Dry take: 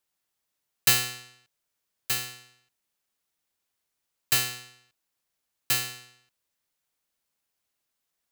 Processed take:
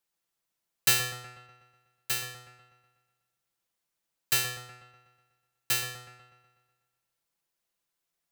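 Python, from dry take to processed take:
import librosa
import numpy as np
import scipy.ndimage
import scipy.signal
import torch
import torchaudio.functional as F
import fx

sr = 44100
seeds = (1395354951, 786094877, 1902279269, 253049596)

y = x + 0.44 * np.pad(x, (int(5.9 * sr / 1000.0), 0))[:len(x)]
y = fx.echo_wet_lowpass(y, sr, ms=123, feedback_pct=55, hz=1400.0, wet_db=-5.0)
y = y * 10.0 ** (-3.5 / 20.0)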